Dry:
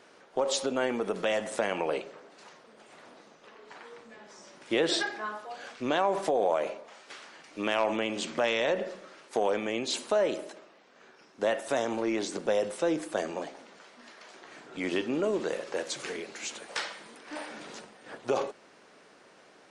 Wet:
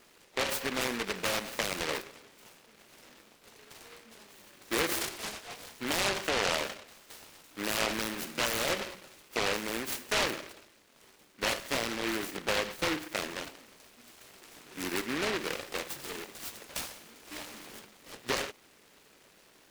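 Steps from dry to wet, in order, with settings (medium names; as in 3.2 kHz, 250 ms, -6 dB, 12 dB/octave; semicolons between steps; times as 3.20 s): delay time shaken by noise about 1.7 kHz, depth 0.32 ms; trim -3.5 dB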